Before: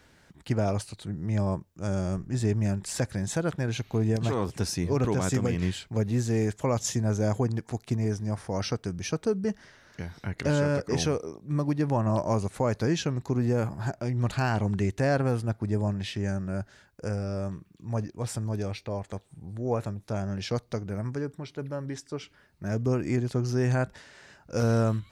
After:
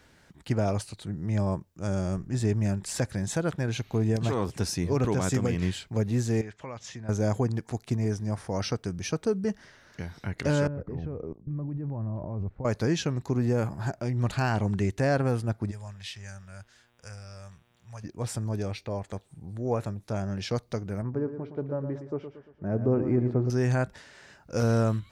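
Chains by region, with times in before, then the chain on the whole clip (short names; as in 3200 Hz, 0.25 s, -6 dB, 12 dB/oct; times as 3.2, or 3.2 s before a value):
6.41–7.09 LPF 2100 Hz + tilt shelf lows -9.5 dB, about 1500 Hz + compressor 2:1, threshold -39 dBFS
10.67–12.65 level quantiser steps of 21 dB + LPF 2400 Hz + tilt -4 dB/oct
15.7–18.03 passive tone stack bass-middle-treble 10-0-10 + buzz 120 Hz, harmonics 32, -69 dBFS -3 dB/oct
21.02–23.5 band-pass 650 Hz, Q 0.67 + tilt -3.5 dB/oct + feedback echo 0.115 s, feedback 45%, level -9.5 dB
whole clip: dry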